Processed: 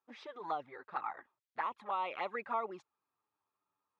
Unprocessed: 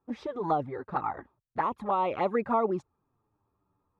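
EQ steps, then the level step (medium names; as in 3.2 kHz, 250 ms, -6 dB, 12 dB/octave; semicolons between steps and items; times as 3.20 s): band-pass filter 2.7 kHz, Q 0.8; -1.0 dB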